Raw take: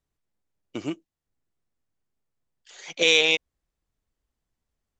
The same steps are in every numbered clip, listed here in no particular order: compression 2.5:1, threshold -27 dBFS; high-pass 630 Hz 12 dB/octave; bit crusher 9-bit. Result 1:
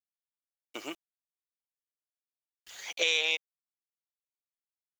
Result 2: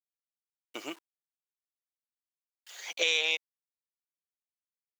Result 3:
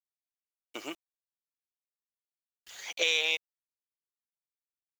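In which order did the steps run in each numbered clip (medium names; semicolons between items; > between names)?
high-pass > bit crusher > compression; bit crusher > high-pass > compression; high-pass > compression > bit crusher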